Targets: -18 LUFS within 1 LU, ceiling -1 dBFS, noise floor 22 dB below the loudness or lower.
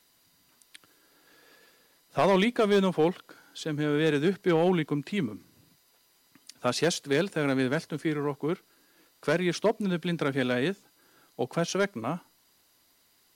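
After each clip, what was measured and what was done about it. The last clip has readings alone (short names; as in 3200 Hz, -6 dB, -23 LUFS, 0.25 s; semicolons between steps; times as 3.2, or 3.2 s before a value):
clipped 0.4%; flat tops at -16.0 dBFS; loudness -28.0 LUFS; peak -16.0 dBFS; loudness target -18.0 LUFS
-> clip repair -16 dBFS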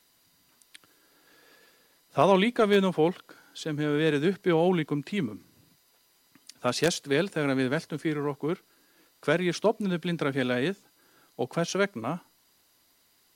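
clipped 0.0%; loudness -27.5 LUFS; peak -7.0 dBFS; loudness target -18.0 LUFS
-> gain +9.5 dB; limiter -1 dBFS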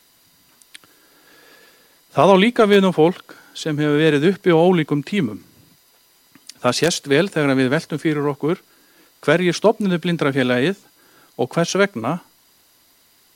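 loudness -18.0 LUFS; peak -1.0 dBFS; noise floor -56 dBFS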